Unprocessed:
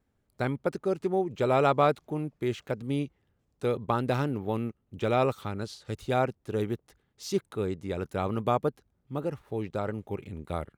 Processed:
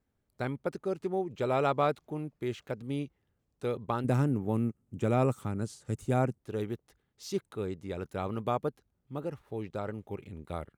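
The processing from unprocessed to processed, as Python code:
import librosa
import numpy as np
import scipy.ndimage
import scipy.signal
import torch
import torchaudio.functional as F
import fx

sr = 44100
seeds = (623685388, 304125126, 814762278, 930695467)

y = fx.graphic_eq(x, sr, hz=(125, 250, 4000, 8000), db=(7, 6, -10, 11), at=(4.04, 6.39))
y = y * 10.0 ** (-4.5 / 20.0)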